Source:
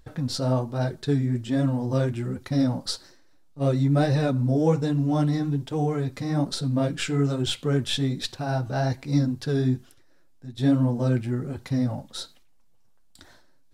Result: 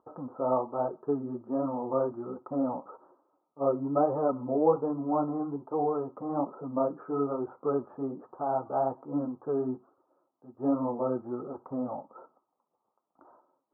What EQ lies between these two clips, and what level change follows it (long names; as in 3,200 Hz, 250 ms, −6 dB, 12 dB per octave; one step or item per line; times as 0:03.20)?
high-pass filter 520 Hz 12 dB per octave
Chebyshev low-pass with heavy ripple 1,300 Hz, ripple 3 dB
+5.0 dB